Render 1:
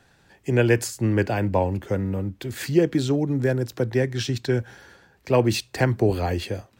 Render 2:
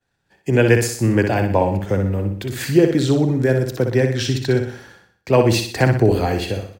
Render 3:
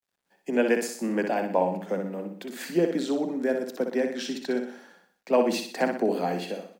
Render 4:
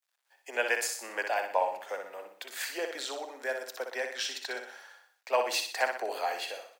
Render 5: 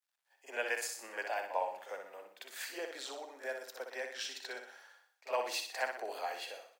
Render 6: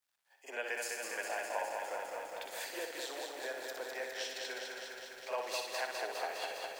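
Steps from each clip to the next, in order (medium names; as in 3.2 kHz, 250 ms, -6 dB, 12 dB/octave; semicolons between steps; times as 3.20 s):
expander -46 dBFS; on a send: feedback delay 61 ms, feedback 44%, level -6.5 dB; on the sum: trim +4.5 dB
rippled Chebyshev high-pass 170 Hz, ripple 6 dB; bit crusher 12-bit; trim -4.5 dB
Bessel high-pass 940 Hz, order 4; trim +3 dB
reverse echo 46 ms -12 dB; trim -7 dB
compression 1.5:1, threshold -51 dBFS, peak gain reduction 8 dB; bit-crushed delay 204 ms, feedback 80%, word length 11-bit, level -4 dB; trim +3.5 dB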